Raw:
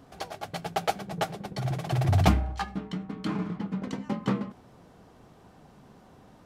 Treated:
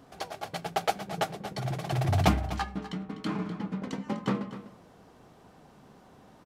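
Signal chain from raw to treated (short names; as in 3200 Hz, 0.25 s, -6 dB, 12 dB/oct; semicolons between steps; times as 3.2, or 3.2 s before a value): low shelf 150 Hz -5.5 dB; echo 0.249 s -13.5 dB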